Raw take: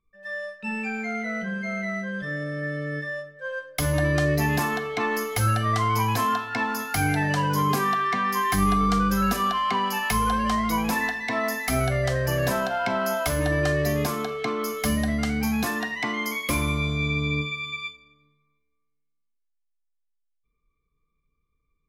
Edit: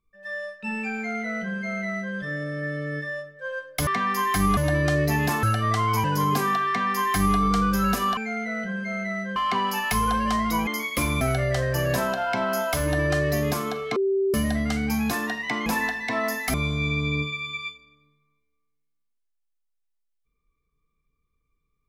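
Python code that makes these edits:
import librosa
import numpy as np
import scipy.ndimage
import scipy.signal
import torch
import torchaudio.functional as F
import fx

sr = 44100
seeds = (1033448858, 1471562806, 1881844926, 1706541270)

y = fx.edit(x, sr, fx.duplicate(start_s=0.95, length_s=1.19, to_s=9.55),
    fx.cut(start_s=4.73, length_s=0.72),
    fx.cut(start_s=6.06, length_s=1.36),
    fx.duplicate(start_s=8.05, length_s=0.7, to_s=3.87),
    fx.swap(start_s=10.86, length_s=0.88, other_s=16.19, other_length_s=0.54),
    fx.bleep(start_s=14.49, length_s=0.38, hz=389.0, db=-19.5), tone=tone)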